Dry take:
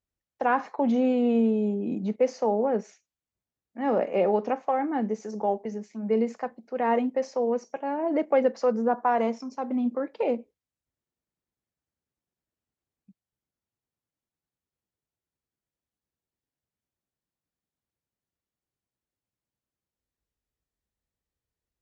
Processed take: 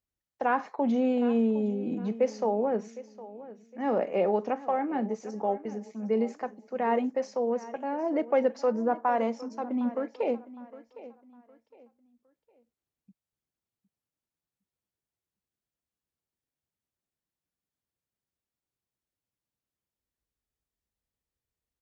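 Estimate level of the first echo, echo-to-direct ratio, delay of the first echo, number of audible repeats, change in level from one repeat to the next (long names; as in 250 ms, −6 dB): −17.0 dB, −16.5 dB, 760 ms, 2, −10.0 dB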